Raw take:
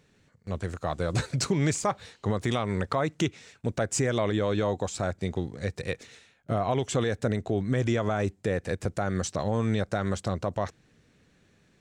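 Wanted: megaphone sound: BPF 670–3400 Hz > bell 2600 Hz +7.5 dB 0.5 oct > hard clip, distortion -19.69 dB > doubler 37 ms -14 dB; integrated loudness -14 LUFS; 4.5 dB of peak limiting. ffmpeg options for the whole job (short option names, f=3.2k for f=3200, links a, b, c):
-filter_complex "[0:a]alimiter=limit=-20.5dB:level=0:latency=1,highpass=670,lowpass=3.4k,equalizer=f=2.6k:t=o:w=0.5:g=7.5,asoftclip=type=hard:threshold=-27.5dB,asplit=2[a][b];[b]adelay=37,volume=-14dB[c];[a][c]amix=inputs=2:normalize=0,volume=25dB"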